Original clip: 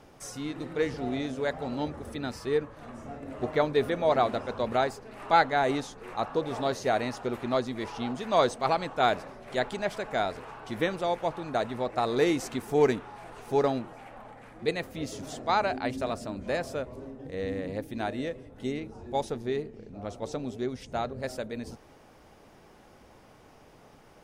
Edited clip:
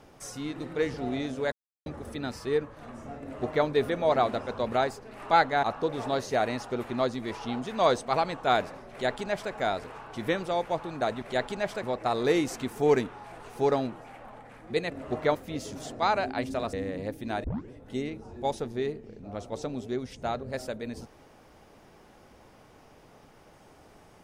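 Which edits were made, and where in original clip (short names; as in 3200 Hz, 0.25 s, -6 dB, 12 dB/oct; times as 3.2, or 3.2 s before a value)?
1.52–1.86 mute
3.21–3.66 copy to 14.82
5.63–6.16 cut
9.44–10.05 copy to 11.75
16.2–17.43 cut
18.14 tape start 0.27 s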